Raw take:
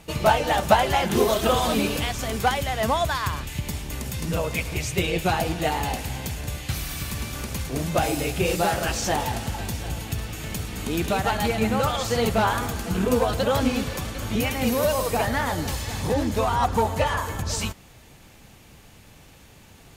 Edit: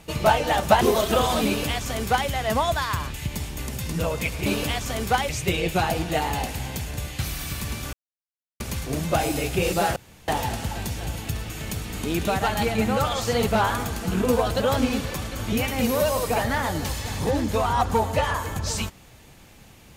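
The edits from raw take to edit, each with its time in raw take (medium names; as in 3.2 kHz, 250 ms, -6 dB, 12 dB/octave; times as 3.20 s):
0.81–1.14 s: delete
1.79–2.62 s: copy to 4.79 s
7.43 s: insert silence 0.67 s
8.79–9.11 s: room tone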